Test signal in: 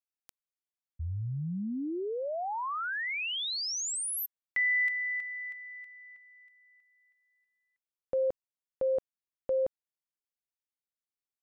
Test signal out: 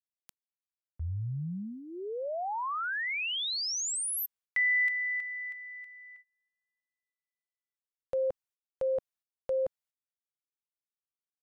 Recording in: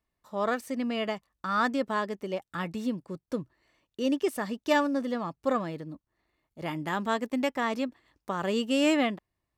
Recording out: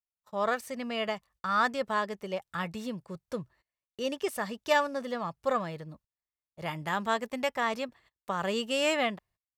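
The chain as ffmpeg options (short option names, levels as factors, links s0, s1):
-af "equalizer=f=290:w=2.1:g=-13,agate=range=0.0447:threshold=0.002:ratio=16:release=167:detection=rms,volume=1.12"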